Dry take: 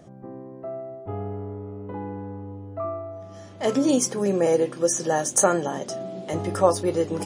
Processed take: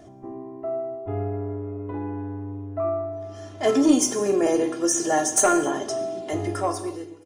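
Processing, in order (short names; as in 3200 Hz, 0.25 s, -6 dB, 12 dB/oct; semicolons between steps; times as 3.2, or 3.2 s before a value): ending faded out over 1.16 s; comb 2.9 ms, depth 80%; soft clip -10 dBFS, distortion -20 dB; non-linear reverb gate 0.31 s falling, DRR 7.5 dB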